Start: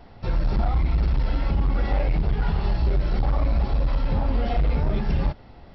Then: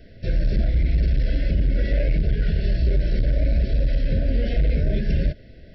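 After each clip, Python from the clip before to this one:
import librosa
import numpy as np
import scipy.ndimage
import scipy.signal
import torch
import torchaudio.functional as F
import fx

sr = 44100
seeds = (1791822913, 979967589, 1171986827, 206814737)

y = scipy.signal.sosfilt(scipy.signal.cheby1(5, 1.0, [660.0, 1500.0], 'bandstop', fs=sr, output='sos'), x)
y = F.gain(torch.from_numpy(y), 2.0).numpy()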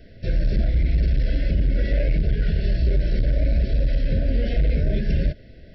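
y = x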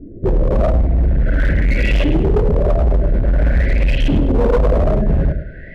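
y = fx.filter_lfo_lowpass(x, sr, shape='saw_up', hz=0.49, low_hz=290.0, high_hz=3200.0, q=7.7)
y = fx.echo_feedback(y, sr, ms=103, feedback_pct=33, wet_db=-9)
y = np.clip(10.0 ** (17.5 / 20.0) * y, -1.0, 1.0) / 10.0 ** (17.5 / 20.0)
y = F.gain(torch.from_numpy(y), 7.5).numpy()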